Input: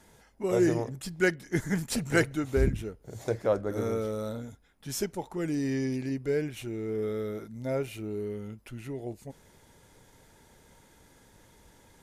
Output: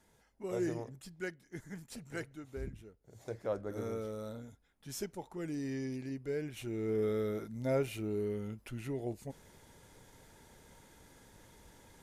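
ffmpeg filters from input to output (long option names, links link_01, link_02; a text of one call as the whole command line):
ffmpeg -i in.wav -af "volume=5.5dB,afade=type=out:start_time=0.84:duration=0.52:silence=0.473151,afade=type=in:start_time=3.01:duration=0.62:silence=0.375837,afade=type=in:start_time=6.39:duration=0.51:silence=0.421697" out.wav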